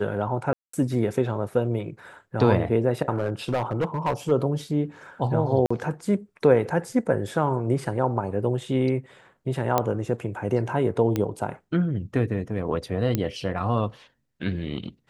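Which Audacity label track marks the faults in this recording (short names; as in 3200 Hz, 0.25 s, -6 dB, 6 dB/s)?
0.530000	0.730000	gap 0.204 s
3.160000	4.320000	clipped -19.5 dBFS
5.660000	5.710000	gap 45 ms
9.780000	9.780000	pop -7 dBFS
11.160000	11.160000	pop -12 dBFS
13.150000	13.150000	pop -10 dBFS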